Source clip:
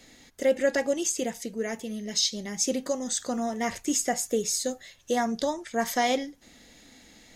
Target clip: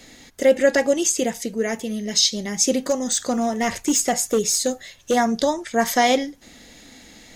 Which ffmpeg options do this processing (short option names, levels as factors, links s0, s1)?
-filter_complex "[0:a]asettb=1/sr,asplit=3[s0][s1][s2];[s0]atrim=end=2.844[s3];[s1]atrim=start=2.84:end=5.15,asetpts=PTS-STARTPTS,afade=t=in:d=0.004:c=qsin,afade=t=out:st=2.306:d=0.004:c=qsin,volume=11.2,asoftclip=hard,volume=0.0891[s4];[s2]atrim=start=5.146[s5];[s3][s4]acrossfade=d=0.004:c1=hsin:c2=qsin[s6];[s6][s5]acrossfade=d=0.004:c1=qsin:c2=hsin,volume=2.37"